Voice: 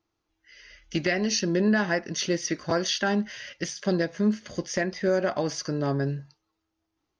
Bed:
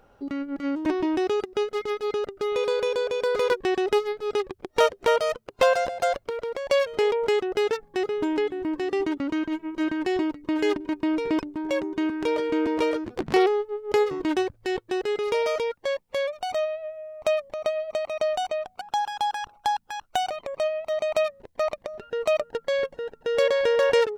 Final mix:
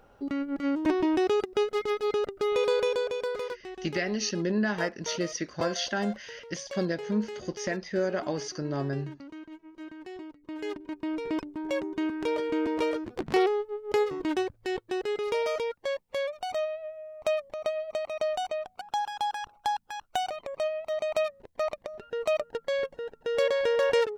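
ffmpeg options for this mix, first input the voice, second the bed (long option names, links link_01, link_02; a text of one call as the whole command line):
ffmpeg -i stem1.wav -i stem2.wav -filter_complex "[0:a]adelay=2900,volume=-4.5dB[link_01];[1:a]volume=12.5dB,afade=type=out:start_time=2.78:duration=0.8:silence=0.149624,afade=type=in:start_time=10.3:duration=1.43:silence=0.223872[link_02];[link_01][link_02]amix=inputs=2:normalize=0" out.wav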